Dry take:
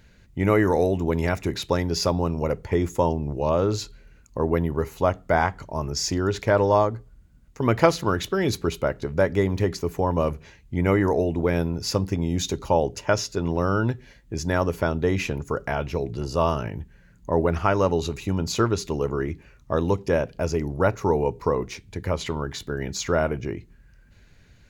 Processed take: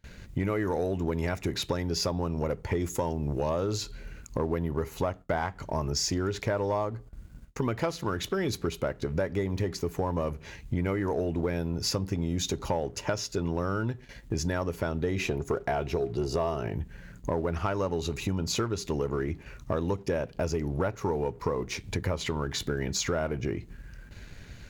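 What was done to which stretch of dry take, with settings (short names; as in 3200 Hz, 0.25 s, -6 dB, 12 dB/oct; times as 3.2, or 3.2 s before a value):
2.8–3.78 high shelf 4000 Hz +7 dB
15.16–16.73 small resonant body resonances 390/690/3800 Hz, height 10 dB
whole clip: compressor 5:1, threshold -36 dBFS; gate with hold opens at -46 dBFS; sample leveller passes 1; gain +5 dB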